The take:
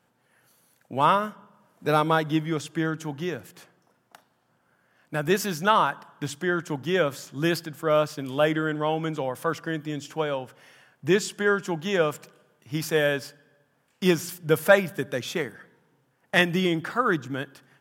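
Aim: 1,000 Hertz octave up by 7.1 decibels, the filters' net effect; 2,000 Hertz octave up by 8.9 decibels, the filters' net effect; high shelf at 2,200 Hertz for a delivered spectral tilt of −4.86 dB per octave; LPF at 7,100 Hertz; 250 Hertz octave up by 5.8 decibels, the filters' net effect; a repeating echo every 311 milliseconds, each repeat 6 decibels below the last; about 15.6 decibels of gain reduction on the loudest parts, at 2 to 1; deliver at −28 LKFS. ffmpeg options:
ffmpeg -i in.wav -af "lowpass=7100,equalizer=frequency=250:width_type=o:gain=8.5,equalizer=frequency=1000:width_type=o:gain=5,equalizer=frequency=2000:width_type=o:gain=6.5,highshelf=frequency=2200:gain=6,acompressor=threshold=-35dB:ratio=2,aecho=1:1:311|622|933|1244|1555|1866:0.501|0.251|0.125|0.0626|0.0313|0.0157,volume=2.5dB" out.wav

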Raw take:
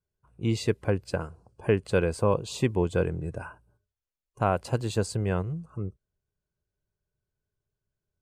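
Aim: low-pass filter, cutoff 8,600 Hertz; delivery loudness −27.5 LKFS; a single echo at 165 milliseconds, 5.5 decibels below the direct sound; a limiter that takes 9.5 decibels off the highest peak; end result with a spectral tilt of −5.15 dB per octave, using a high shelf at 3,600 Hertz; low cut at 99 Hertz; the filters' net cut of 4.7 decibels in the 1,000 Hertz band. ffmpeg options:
ffmpeg -i in.wav -af "highpass=99,lowpass=8600,equalizer=frequency=1000:width_type=o:gain=-7,highshelf=frequency=3600:gain=5,alimiter=limit=-20dB:level=0:latency=1,aecho=1:1:165:0.531,volume=5.5dB" out.wav

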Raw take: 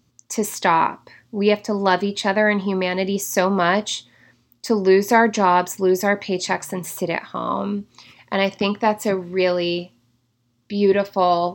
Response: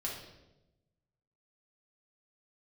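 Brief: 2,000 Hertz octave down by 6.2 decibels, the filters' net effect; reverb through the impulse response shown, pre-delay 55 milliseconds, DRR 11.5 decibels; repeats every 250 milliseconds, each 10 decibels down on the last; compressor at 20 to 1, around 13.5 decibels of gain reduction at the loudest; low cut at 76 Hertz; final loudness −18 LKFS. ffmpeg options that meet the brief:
-filter_complex "[0:a]highpass=76,equalizer=frequency=2000:width_type=o:gain=-7.5,acompressor=threshold=-24dB:ratio=20,aecho=1:1:250|500|750|1000:0.316|0.101|0.0324|0.0104,asplit=2[link_01][link_02];[1:a]atrim=start_sample=2205,adelay=55[link_03];[link_02][link_03]afir=irnorm=-1:irlink=0,volume=-13.5dB[link_04];[link_01][link_04]amix=inputs=2:normalize=0,volume=11.5dB"

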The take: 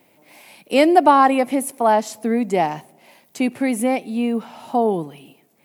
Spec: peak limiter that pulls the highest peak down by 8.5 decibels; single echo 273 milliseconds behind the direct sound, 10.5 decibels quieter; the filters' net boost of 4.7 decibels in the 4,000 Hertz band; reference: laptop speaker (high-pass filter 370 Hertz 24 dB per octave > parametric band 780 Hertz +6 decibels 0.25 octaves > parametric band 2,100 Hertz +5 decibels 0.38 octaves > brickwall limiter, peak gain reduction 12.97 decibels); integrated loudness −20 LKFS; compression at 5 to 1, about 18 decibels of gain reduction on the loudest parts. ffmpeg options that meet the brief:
ffmpeg -i in.wav -af "equalizer=frequency=4000:width_type=o:gain=6,acompressor=threshold=-29dB:ratio=5,alimiter=limit=-24dB:level=0:latency=1,highpass=frequency=370:width=0.5412,highpass=frequency=370:width=1.3066,equalizer=frequency=780:width_type=o:width=0.25:gain=6,equalizer=frequency=2100:width_type=o:width=0.38:gain=5,aecho=1:1:273:0.299,volume=21.5dB,alimiter=limit=-11.5dB:level=0:latency=1" out.wav

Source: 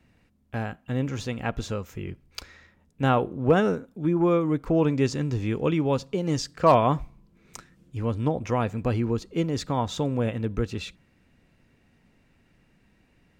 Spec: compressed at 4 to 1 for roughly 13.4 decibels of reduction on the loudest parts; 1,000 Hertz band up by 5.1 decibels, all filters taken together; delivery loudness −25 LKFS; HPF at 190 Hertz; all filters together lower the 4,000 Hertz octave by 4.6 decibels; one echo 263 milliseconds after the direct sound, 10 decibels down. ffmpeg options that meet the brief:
ffmpeg -i in.wav -af "highpass=190,equalizer=frequency=1000:width_type=o:gain=6.5,equalizer=frequency=4000:width_type=o:gain=-6.5,acompressor=threshold=-25dB:ratio=4,aecho=1:1:263:0.316,volume=6dB" out.wav

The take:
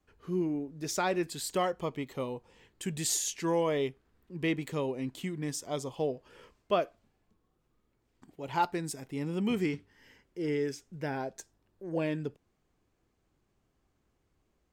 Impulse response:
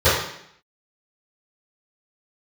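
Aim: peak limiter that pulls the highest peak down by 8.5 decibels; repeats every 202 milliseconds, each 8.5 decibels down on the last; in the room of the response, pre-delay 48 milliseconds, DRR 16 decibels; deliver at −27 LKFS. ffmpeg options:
-filter_complex "[0:a]alimiter=limit=-24dB:level=0:latency=1,aecho=1:1:202|404|606|808:0.376|0.143|0.0543|0.0206,asplit=2[link_01][link_02];[1:a]atrim=start_sample=2205,adelay=48[link_03];[link_02][link_03]afir=irnorm=-1:irlink=0,volume=-39.5dB[link_04];[link_01][link_04]amix=inputs=2:normalize=0,volume=8dB"

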